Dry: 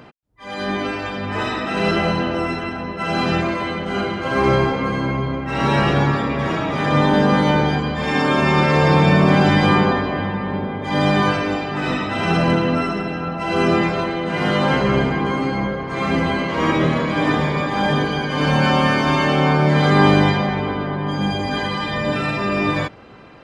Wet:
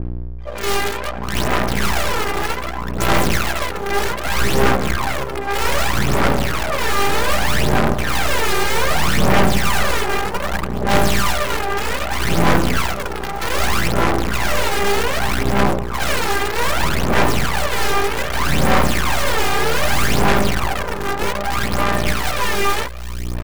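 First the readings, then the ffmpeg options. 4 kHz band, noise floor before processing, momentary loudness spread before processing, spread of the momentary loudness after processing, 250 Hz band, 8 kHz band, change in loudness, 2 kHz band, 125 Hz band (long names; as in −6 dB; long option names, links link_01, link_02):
+3.5 dB, −29 dBFS, 9 LU, 7 LU, −5.0 dB, +16.0 dB, −0.5 dB, +1.5 dB, −3.5 dB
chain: -filter_complex "[0:a]highpass=frequency=260:poles=1,afwtdn=0.0447,aecho=1:1:5.1:0.43,asplit=2[link_01][link_02];[link_02]alimiter=limit=-10dB:level=0:latency=1:release=312,volume=1dB[link_03];[link_01][link_03]amix=inputs=2:normalize=0,aeval=exprs='(tanh(2*val(0)+0.65)-tanh(0.65))/2':channel_layout=same,aeval=exprs='(mod(5.01*val(0)+1,2)-1)/5.01':channel_layout=same,aeval=exprs='val(0)+0.0316*(sin(2*PI*60*n/s)+sin(2*PI*2*60*n/s)/2+sin(2*PI*3*60*n/s)/3+sin(2*PI*4*60*n/s)/4+sin(2*PI*5*60*n/s)/5)':channel_layout=same,asplit=2[link_04][link_05];[link_05]aecho=0:1:599:0.119[link_06];[link_04][link_06]amix=inputs=2:normalize=0,aphaser=in_gain=1:out_gain=1:delay=2.5:decay=0.66:speed=0.64:type=sinusoidal,aeval=exprs='max(val(0),0)':channel_layout=same,adynamicequalizer=threshold=0.0178:dfrequency=2800:dqfactor=0.7:tfrequency=2800:tqfactor=0.7:attack=5:release=100:ratio=0.375:range=3:mode=cutabove:tftype=highshelf,volume=1.5dB"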